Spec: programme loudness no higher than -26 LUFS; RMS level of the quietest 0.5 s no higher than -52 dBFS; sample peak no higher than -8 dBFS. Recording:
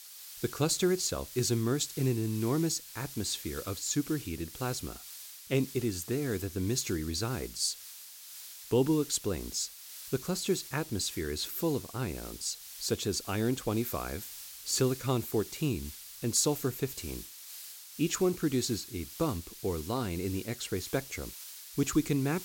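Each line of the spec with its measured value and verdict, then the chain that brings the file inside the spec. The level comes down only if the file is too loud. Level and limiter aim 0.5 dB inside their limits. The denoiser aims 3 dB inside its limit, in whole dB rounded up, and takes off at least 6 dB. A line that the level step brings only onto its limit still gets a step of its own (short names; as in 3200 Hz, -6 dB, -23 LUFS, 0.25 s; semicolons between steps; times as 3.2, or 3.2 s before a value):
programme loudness -32.5 LUFS: OK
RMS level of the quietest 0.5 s -48 dBFS: fail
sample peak -15.0 dBFS: OK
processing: denoiser 7 dB, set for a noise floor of -48 dBFS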